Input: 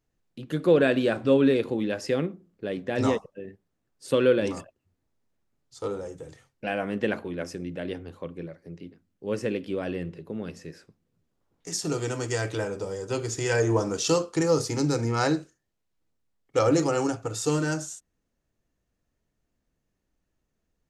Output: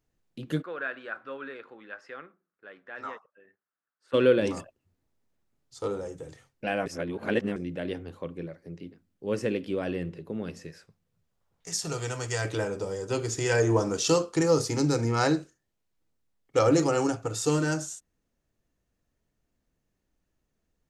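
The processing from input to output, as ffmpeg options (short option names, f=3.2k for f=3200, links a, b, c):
-filter_complex "[0:a]asplit=3[a][b][c];[a]afade=t=out:st=0.61:d=0.02[d];[b]bandpass=f=1.4k:t=q:w=3.5,afade=t=in:st=0.61:d=0.02,afade=t=out:st=4.13:d=0.02[e];[c]afade=t=in:st=4.13:d=0.02[f];[d][e][f]amix=inputs=3:normalize=0,asettb=1/sr,asplit=3[g][h][i];[g]atrim=end=10.674[j];[h]atrim=start=10.67:end=12.45,asetpts=PTS-STARTPTS,afade=t=in:d=0.004:c=qsin,afade=t=out:st=1.776:d=0.004:c=qsin,equalizer=f=300:w=1.5:g=-11.5[k];[i]atrim=start=12.446[l];[j][k]acrossfade=d=0.004:c1=hsin:c2=qsin[m];[m][l]acrossfade=d=0.004:c1=qsin:c2=hsin,asplit=3[n][o][p];[n]atrim=end=6.862[q];[o]atrim=start=6.858:end=7.562,asetpts=PTS-STARTPTS,areverse[r];[p]atrim=start=7.558[s];[q][r]acrossfade=d=0.004:c1=hsin:c2=hsin[t];[t][s]acrossfade=d=0.004:c1=hsin:c2=hsin"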